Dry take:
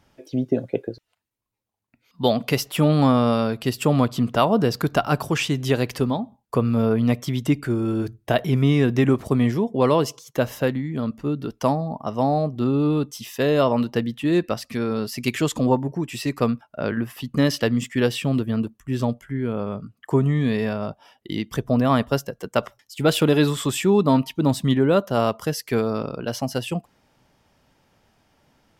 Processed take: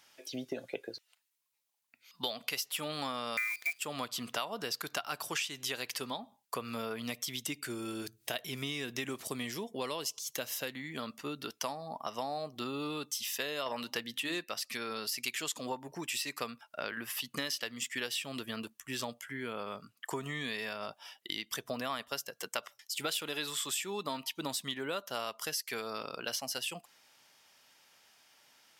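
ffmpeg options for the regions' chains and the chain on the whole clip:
-filter_complex "[0:a]asettb=1/sr,asplit=3[s0][s1][s2];[s0]atrim=end=3.374[s3];[s1]atrim=start=3.37:end=3.79,asetpts=PTS-STARTPTS,afade=t=in:d=0.004:c=qsin,afade=t=out:st=0.416:d=0.004:c=qsin,aecho=1:1:3.7:0.87,atrim=end_sample=18522,lowpass=f=2200:t=q:w=0.5098,lowpass=f=2200:t=q:w=0.6013,lowpass=f=2200:t=q:w=0.9,lowpass=f=2200:t=q:w=2.563,afreqshift=-2600,acrusher=bits=6:dc=4:mix=0:aa=0.000001[s4];[s2]atrim=start=3.786[s5];[s3][s4]acrossfade=d=0.004:c1=hsin:c2=qsin[s6];[s6][s5]acrossfade=d=0.004:c1=qsin:c2=hsin,asettb=1/sr,asplit=3[s7][s8][s9];[s7]atrim=end=7.024[s10];[s8]atrim=start=7.02:end=10.75,asetpts=PTS-STARTPTS,afade=t=in:d=0.004:c=qsin,afade=t=out:st=3.726:d=0.004:c=qsin,equalizer=f=1200:t=o:w=2.4:g=-6,acompressor=mode=upward:threshold=0.0178:ratio=2.5:attack=3.2:release=140:knee=2.83:detection=peak[s11];[s9]atrim=start=10.746[s12];[s10][s11]acrossfade=d=0.004:c1=hsin:c2=qsin[s13];[s13][s12]acrossfade=d=0.004:c1=qsin:c2=hsin,asettb=1/sr,asplit=3[s14][s15][s16];[s14]atrim=end=13.664[s17];[s15]atrim=start=13.66:end=14.44,asetpts=PTS-STARTPTS,afade=t=in:d=0.004:c=qsin,afade=t=out:st=0.776:d=0.004:c=qsin,bandreject=f=50:t=h:w=6,bandreject=f=100:t=h:w=6,bandreject=f=150:t=h:w=6,bandreject=f=200:t=h:w=6,bandreject=f=250:t=h:w=6,bandreject=f=300:t=h:w=6,acontrast=28[s18];[s16]atrim=start=14.436[s19];[s17][s18]acrossfade=d=0.004:c1=hsin:c2=qsin[s20];[s20][s19]acrossfade=d=0.004:c1=qsin:c2=hsin,highpass=f=630:p=1,tiltshelf=f=1400:g=-7.5,acompressor=threshold=0.02:ratio=5"

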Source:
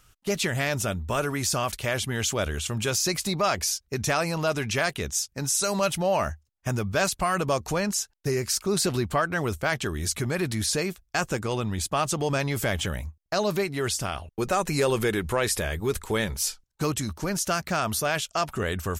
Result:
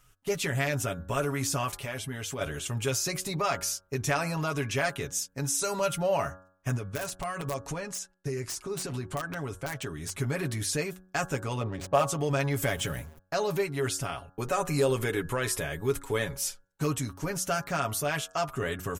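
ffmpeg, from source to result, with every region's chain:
-filter_complex "[0:a]asettb=1/sr,asplit=3[s0][s1][s2];[s0]atrim=end=1.784[s3];[s1]atrim=start=1.78:end=2.41,asetpts=PTS-STARTPTS,afade=t=in:d=0.004:c=qsin,afade=t=out:st=0.626:d=0.004:c=qsin,bandreject=f=6800:w=11,acompressor=threshold=0.0282:ratio=2:attack=3.2:release=140:knee=1:detection=peak,asplit=2[s4][s5];[s5]adelay=12,volume=0.282[s6];[s4][s6]amix=inputs=2:normalize=0,atrim=end_sample=27783[s7];[s2]atrim=start=2.406[s8];[s3][s7]acrossfade=d=0.004:c1=hsin:c2=qsin[s9];[s9][s8]acrossfade=d=0.004:c1=qsin:c2=hsin,asettb=1/sr,asplit=3[s10][s11][s12];[s10]atrim=end=6.764[s13];[s11]atrim=start=6.76:end=10.18,asetpts=PTS-STARTPTS,afade=t=in:d=0.004:c=qsin,afade=t=out:st=3.416:d=0.004:c=qsin,lowpass=f=11000:w=0.5412,lowpass=f=11000:w=1.3066,acompressor=threshold=0.0398:ratio=3:attack=3.2:release=140:knee=1:detection=peak,aeval=exprs='(mod(11.9*val(0)+1,2)-1)/11.9':c=same[s14];[s12]atrim=start=10.176[s15];[s13][s14]acrossfade=d=0.004:c1=hsin:c2=qsin[s16];[s16][s15]acrossfade=d=0.004:c1=qsin:c2=hsin,asettb=1/sr,asplit=3[s17][s18][s19];[s17]atrim=end=11.614[s20];[s18]atrim=start=11.61:end=12.04,asetpts=PTS-STARTPTS,afade=t=in:d=0.004:c=qsin,afade=t=out:st=0.426:d=0.004:c=qsin,adynamicsmooth=sensitivity=5.5:basefreq=820,equalizer=f=560:t=o:w=0.61:g=11.5[s21];[s19]atrim=start=12.036[s22];[s20][s21]acrossfade=d=0.004:c1=hsin:c2=qsin[s23];[s23][s22]acrossfade=d=0.004:c1=qsin:c2=hsin,asettb=1/sr,asplit=3[s24][s25][s26];[s24]atrim=end=12.624[s27];[s25]atrim=start=12.62:end=13.19,asetpts=PTS-STARTPTS,afade=t=in:d=0.004:c=qsin,afade=t=out:st=0.566:d=0.004:c=qsin,aeval=exprs='val(0)+0.5*0.00891*sgn(val(0))':c=same,highshelf=f=7600:g=5.5[s28];[s26]atrim=start=13.186[s29];[s27][s28]acrossfade=d=0.004:c1=hsin:c2=qsin[s30];[s30][s29]acrossfade=d=0.004:c1=qsin:c2=hsin,equalizer=f=4400:w=1.7:g=-4.5,aecho=1:1:7.2:0.65,bandreject=f=92.89:t=h:w=4,bandreject=f=185.78:t=h:w=4,bandreject=f=278.67:t=h:w=4,bandreject=f=371.56:t=h:w=4,bandreject=f=464.45:t=h:w=4,bandreject=f=557.34:t=h:w=4,bandreject=f=650.23:t=h:w=4,bandreject=f=743.12:t=h:w=4,bandreject=f=836.01:t=h:w=4,bandreject=f=928.9:t=h:w=4,bandreject=f=1021.79:t=h:w=4,bandreject=f=1114.68:t=h:w=4,bandreject=f=1207.57:t=h:w=4,bandreject=f=1300.46:t=h:w=4,bandreject=f=1393.35:t=h:w=4,bandreject=f=1486.24:t=h:w=4,bandreject=f=1579.13:t=h:w=4,bandreject=f=1672.02:t=h:w=4,volume=0.596"

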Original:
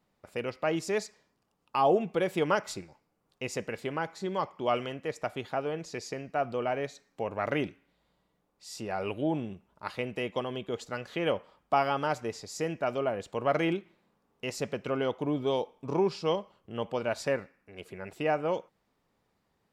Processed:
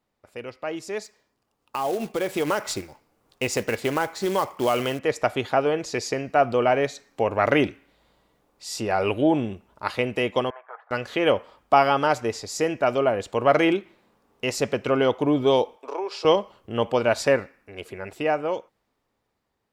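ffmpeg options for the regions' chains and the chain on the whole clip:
-filter_complex "[0:a]asettb=1/sr,asplit=3[s0][s1][s2];[s0]atrim=end=1.044[s3];[s1]atrim=start=1.04:end=4.99,asetpts=PTS-STARTPTS,afade=t=in:d=0.004:c=qsin,afade=t=out:st=3.946:d=0.004:c=qsin,acrusher=bits=4:mode=log:mix=0:aa=0.000001,acompressor=threshold=0.0398:ratio=4:attack=3.2:release=140:knee=1:detection=peak[s4];[s2]atrim=start=4.986[s5];[s3][s4]acrossfade=d=0.004:c1=hsin:c2=qsin[s6];[s6][s5]acrossfade=d=0.004:c1=qsin:c2=hsin,asettb=1/sr,asplit=3[s7][s8][s9];[s7]atrim=end=10.504[s10];[s8]atrim=start=10.5:end=10.91,asetpts=PTS-STARTPTS,afade=t=in:d=0.004:c=qsin,afade=t=out:st=0.406:d=0.004:c=qsin,volume=28.2,asoftclip=hard,volume=0.0355,asuperpass=centerf=1100:order=8:qfactor=1[s11];[s9]atrim=start=10.906[s12];[s10][s11]acrossfade=d=0.004:c1=hsin:c2=qsin[s13];[s13][s12]acrossfade=d=0.004:c1=qsin:c2=hsin,asettb=1/sr,asplit=3[s14][s15][s16];[s14]atrim=end=15.764[s17];[s15]atrim=start=15.76:end=16.25,asetpts=PTS-STARTPTS,afade=t=in:d=0.004:c=qsin,afade=t=out:st=0.486:d=0.004:c=qsin,highpass=f=440:w=0.5412,highpass=f=440:w=1.3066,highshelf=f=5500:g=-5,acompressor=threshold=0.00794:ratio=2:attack=3.2:release=140:knee=1:detection=peak[s18];[s16]atrim=start=16.246[s19];[s17][s18]acrossfade=d=0.004:c1=hsin:c2=qsin[s20];[s20][s19]acrossfade=d=0.004:c1=qsin:c2=hsin,equalizer=f=170:t=o:w=0.35:g=-9.5,dynaudnorm=f=320:g=13:m=4.73,volume=0.794"

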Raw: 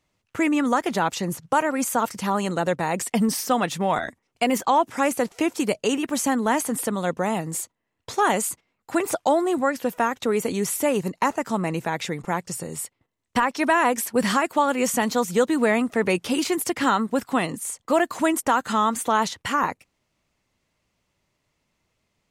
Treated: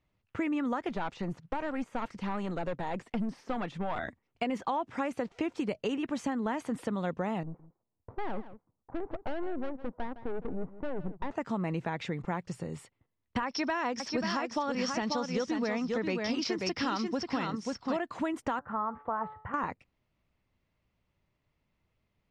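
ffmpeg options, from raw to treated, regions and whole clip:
-filter_complex "[0:a]asettb=1/sr,asplit=3[s0][s1][s2];[s0]atrim=end=0.894[s3];[s1]atrim=start=0.89:end=3.99,asetpts=PTS-STARTPTS,afade=t=in:d=0.004:c=qsin,afade=t=out:st=3.096:d=0.004:c=qsin,deesser=0.8,equalizer=f=86:t=o:w=1.6:g=-6.5,aeval=exprs='(tanh(8.91*val(0)+0.3)-tanh(0.3))/8.91':c=same[s4];[s2]atrim=start=3.986[s5];[s3][s4]acrossfade=d=0.004:c1=hsin:c2=qsin[s6];[s6][s5]acrossfade=d=0.004:c1=qsin:c2=hsin,asettb=1/sr,asplit=3[s7][s8][s9];[s7]atrim=end=7.434[s10];[s8]atrim=start=7.43:end=11.31,asetpts=PTS-STARTPTS,afade=t=in:d=0.004:c=qsin,afade=t=out:st=3.876:d=0.004:c=qsin,lowpass=f=1000:w=0.5412,lowpass=f=1000:w=1.3066,aeval=exprs='(tanh(20*val(0)+0.7)-tanh(0.7))/20':c=same,aecho=1:1:161:0.168,atrim=end_sample=171108[s11];[s9]atrim=start=11.306[s12];[s10][s11]acrossfade=d=0.004:c1=hsin:c2=qsin[s13];[s13][s12]acrossfade=d=0.004:c1=qsin:c2=hsin,asettb=1/sr,asplit=3[s14][s15][s16];[s14]atrim=end=13.464[s17];[s15]atrim=start=13.46:end=17.97,asetpts=PTS-STARTPTS,afade=t=in:d=0.004:c=qsin,afade=t=out:st=4.506:d=0.004:c=qsin,lowpass=f=5400:t=q:w=14,aecho=1:1:537:0.531,atrim=end_sample=198891[s18];[s16]atrim=start=17.966[s19];[s17][s18]acrossfade=d=0.004:c1=hsin:c2=qsin[s20];[s20][s19]acrossfade=d=0.004:c1=qsin:c2=hsin,asettb=1/sr,asplit=3[s21][s22][s23];[s21]atrim=end=18.594[s24];[s22]atrim=start=18.59:end=19.54,asetpts=PTS-STARTPTS,afade=t=in:d=0.004:c=qsin,afade=t=out:st=0.946:d=0.004:c=qsin,lowpass=f=1400:w=0.5412,lowpass=f=1400:w=1.3066,equalizer=f=270:t=o:w=1.2:g=-11,bandreject=f=143.9:t=h:w=4,bandreject=f=287.8:t=h:w=4,bandreject=f=431.7:t=h:w=4,bandreject=f=575.6:t=h:w=4,bandreject=f=719.5:t=h:w=4,bandreject=f=863.4:t=h:w=4,bandreject=f=1007.3:t=h:w=4,bandreject=f=1151.2:t=h:w=4,bandreject=f=1295.1:t=h:w=4,bandreject=f=1439:t=h:w=4,bandreject=f=1582.9:t=h:w=4,bandreject=f=1726.8:t=h:w=4,bandreject=f=1870.7:t=h:w=4,bandreject=f=2014.6:t=h:w=4,bandreject=f=2158.5:t=h:w=4,bandreject=f=2302.4:t=h:w=4,bandreject=f=2446.3:t=h:w=4,bandreject=f=2590.2:t=h:w=4,bandreject=f=2734.1:t=h:w=4,bandreject=f=2878:t=h:w=4,bandreject=f=3021.9:t=h:w=4,bandreject=f=3165.8:t=h:w=4,bandreject=f=3309.7:t=h:w=4,bandreject=f=3453.6:t=h:w=4,bandreject=f=3597.5:t=h:w=4,bandreject=f=3741.4:t=h:w=4,bandreject=f=3885.3:t=h:w=4,bandreject=f=4029.2:t=h:w=4,bandreject=f=4173.1:t=h:w=4,bandreject=f=4317:t=h:w=4,bandreject=f=4460.9:t=h:w=4,bandreject=f=4604.8:t=h:w=4,bandreject=f=4748.7:t=h:w=4,bandreject=f=4892.6:t=h:w=4,bandreject=f=5036.5:t=h:w=4,bandreject=f=5180.4:t=h:w=4[s25];[s23]atrim=start=19.536[s26];[s24][s25]acrossfade=d=0.004:c1=hsin:c2=qsin[s27];[s27][s26]acrossfade=d=0.004:c1=qsin:c2=hsin,lowpass=3600,lowshelf=f=160:g=9,acompressor=threshold=0.0891:ratio=6,volume=0.447"

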